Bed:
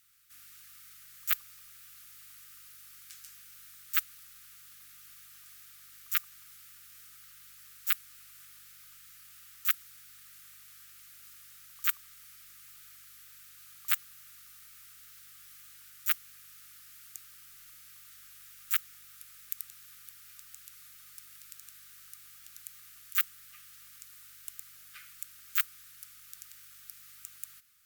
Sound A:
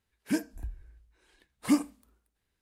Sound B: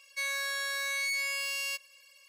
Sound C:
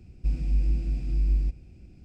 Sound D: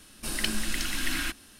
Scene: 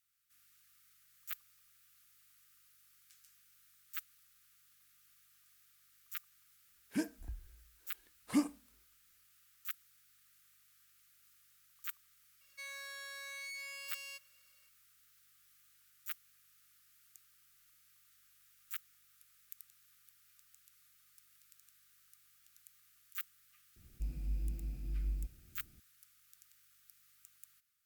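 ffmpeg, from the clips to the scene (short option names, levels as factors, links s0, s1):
-filter_complex "[0:a]volume=0.188[s0];[1:a]atrim=end=2.61,asetpts=PTS-STARTPTS,volume=0.447,afade=t=in:d=0.004:c=hsin,afade=t=out:st=2.606:d=0.004:c=hsin,adelay=6650[s1];[2:a]atrim=end=2.28,asetpts=PTS-STARTPTS,volume=0.2,afade=t=in:d=0.004:c=hsin,afade=t=out:st=2.276:d=0.004:c=hsin,adelay=12410[s2];[3:a]atrim=end=2.04,asetpts=PTS-STARTPTS,volume=0.211,afade=t=in:d=0.004:c=hsin,afade=t=out:st=2.036:d=0.004:c=hsin,adelay=23760[s3];[s0][s1][s2][s3]amix=inputs=4:normalize=0"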